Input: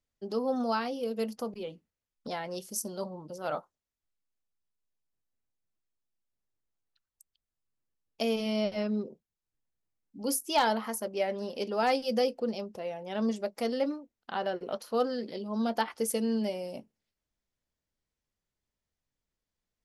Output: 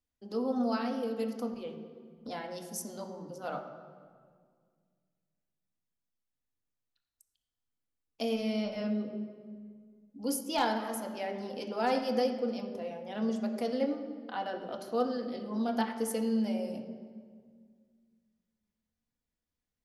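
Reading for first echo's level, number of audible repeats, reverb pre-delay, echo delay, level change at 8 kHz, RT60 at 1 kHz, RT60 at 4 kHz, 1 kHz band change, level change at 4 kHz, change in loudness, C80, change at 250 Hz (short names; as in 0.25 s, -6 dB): none, none, 3 ms, none, -5.0 dB, 1.8 s, 1.3 s, -2.5 dB, -4.0 dB, -2.0 dB, 9.0 dB, +0.5 dB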